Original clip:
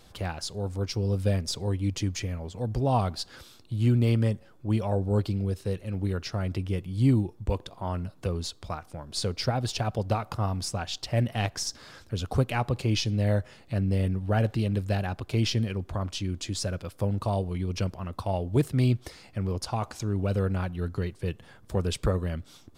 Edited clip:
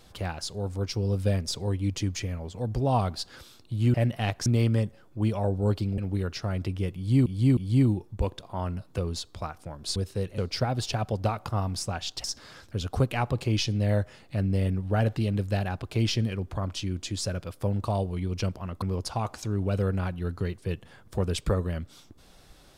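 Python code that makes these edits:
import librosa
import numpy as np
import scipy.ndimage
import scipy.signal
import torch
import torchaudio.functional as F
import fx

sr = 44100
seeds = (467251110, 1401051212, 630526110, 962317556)

y = fx.edit(x, sr, fx.move(start_s=5.46, length_s=0.42, to_s=9.24),
    fx.repeat(start_s=6.85, length_s=0.31, count=3),
    fx.move(start_s=11.1, length_s=0.52, to_s=3.94),
    fx.cut(start_s=18.2, length_s=1.19), tone=tone)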